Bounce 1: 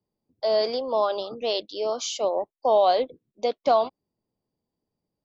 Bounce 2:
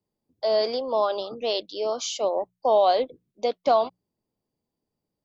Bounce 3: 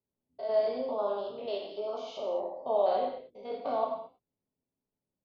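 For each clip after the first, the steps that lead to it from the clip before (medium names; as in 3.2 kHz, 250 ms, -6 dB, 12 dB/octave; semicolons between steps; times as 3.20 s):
hum notches 60/120/180 Hz
spectrogram pixelated in time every 100 ms; distance through air 310 m; gated-style reverb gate 260 ms falling, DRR -1 dB; trim -8 dB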